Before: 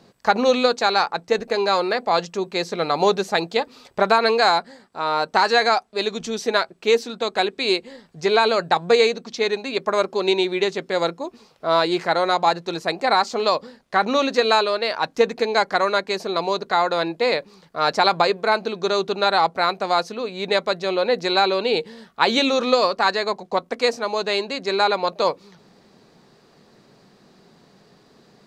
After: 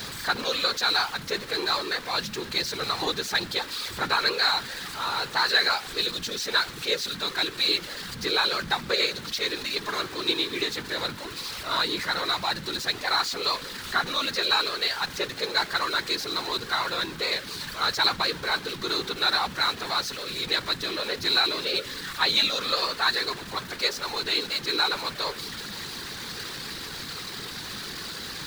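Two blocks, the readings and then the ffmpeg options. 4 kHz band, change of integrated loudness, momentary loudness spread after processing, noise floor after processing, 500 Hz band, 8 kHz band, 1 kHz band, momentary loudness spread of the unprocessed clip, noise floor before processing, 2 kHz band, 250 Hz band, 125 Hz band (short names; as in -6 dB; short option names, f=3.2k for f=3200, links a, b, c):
+1.5 dB, -5.0 dB, 11 LU, -39 dBFS, -14.0 dB, +2.5 dB, -9.5 dB, 8 LU, -55 dBFS, -2.5 dB, -9.5 dB, -4.0 dB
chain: -af "aeval=exprs='val(0)+0.5*0.075*sgn(val(0))':c=same,equalizer=f=250:t=o:w=0.67:g=-10,equalizer=f=630:t=o:w=0.67:g=-12,equalizer=f=1.6k:t=o:w=0.67:g=6,equalizer=f=4k:t=o:w=0.67:g=9,afftfilt=real='hypot(re,im)*cos(2*PI*random(0))':imag='hypot(re,im)*sin(2*PI*random(1))':win_size=512:overlap=0.75,volume=-3dB"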